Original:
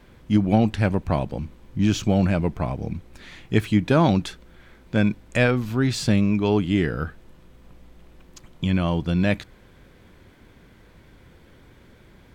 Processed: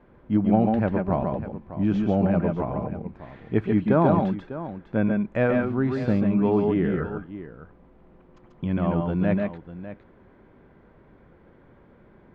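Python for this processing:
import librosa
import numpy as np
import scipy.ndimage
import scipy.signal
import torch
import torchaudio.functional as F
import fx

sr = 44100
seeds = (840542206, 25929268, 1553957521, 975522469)

y = scipy.signal.sosfilt(scipy.signal.butter(2, 1200.0, 'lowpass', fs=sr, output='sos'), x)
y = fx.low_shelf(y, sr, hz=140.0, db=-9.5)
y = fx.echo_multitap(y, sr, ms=(136, 141, 600), db=(-9.5, -4.5, -13.5))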